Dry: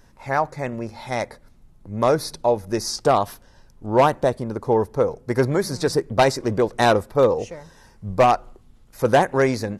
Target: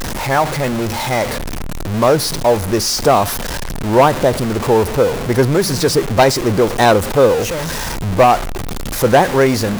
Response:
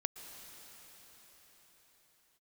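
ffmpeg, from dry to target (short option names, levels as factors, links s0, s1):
-af "aeval=exprs='val(0)+0.5*0.0944*sgn(val(0))':c=same,volume=1.58"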